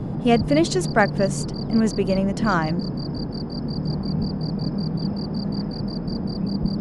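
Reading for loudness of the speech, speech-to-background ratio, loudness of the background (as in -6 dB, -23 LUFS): -22.0 LUFS, 5.0 dB, -27.0 LUFS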